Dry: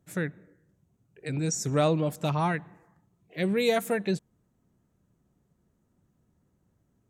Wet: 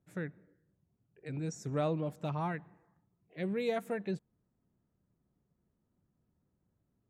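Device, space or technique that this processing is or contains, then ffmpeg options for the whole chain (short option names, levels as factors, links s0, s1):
through cloth: -af "highshelf=f=3800:g=-12.5,volume=0.398"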